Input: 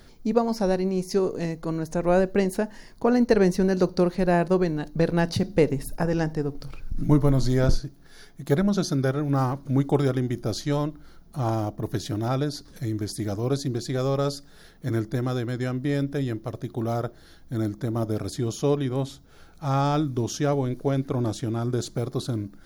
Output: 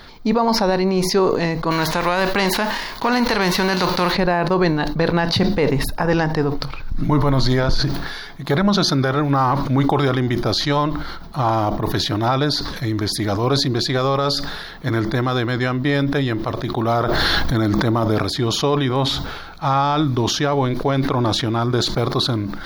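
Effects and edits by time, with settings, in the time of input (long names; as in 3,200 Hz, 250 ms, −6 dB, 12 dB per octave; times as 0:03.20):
0:01.70–0:04.11: spectral envelope flattened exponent 0.6
0:16.98–0:18.19: envelope flattener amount 100%
whole clip: octave-band graphic EQ 1,000/2,000/4,000/8,000 Hz +11/+5/+11/−10 dB; brickwall limiter −14 dBFS; level that may fall only so fast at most 40 dB per second; level +5.5 dB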